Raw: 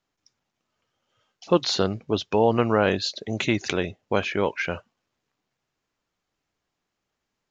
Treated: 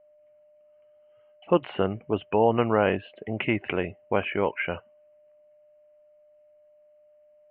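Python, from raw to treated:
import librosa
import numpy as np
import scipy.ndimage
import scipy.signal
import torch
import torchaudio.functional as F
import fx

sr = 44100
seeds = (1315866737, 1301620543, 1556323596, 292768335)

y = x + 10.0 ** (-55.0 / 20.0) * np.sin(2.0 * np.pi * 600.0 * np.arange(len(x)) / sr)
y = scipy.signal.sosfilt(scipy.signal.cheby1(6, 3, 3000.0, 'lowpass', fs=sr, output='sos'), y)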